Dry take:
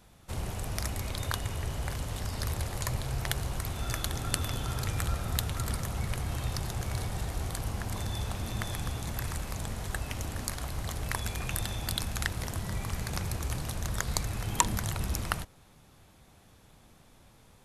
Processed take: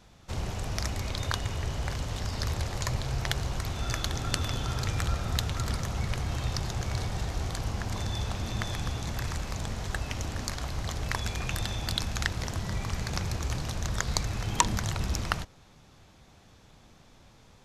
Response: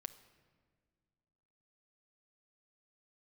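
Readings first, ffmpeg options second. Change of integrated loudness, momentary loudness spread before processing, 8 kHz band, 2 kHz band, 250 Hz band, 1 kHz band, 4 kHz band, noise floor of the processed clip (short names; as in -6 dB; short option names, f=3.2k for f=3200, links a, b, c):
+2.0 dB, 4 LU, 0.0 dB, +2.5 dB, +2.0 dB, +2.0 dB, +3.5 dB, -56 dBFS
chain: -af "highshelf=f=7.9k:t=q:w=1.5:g=-8.5,volume=2dB"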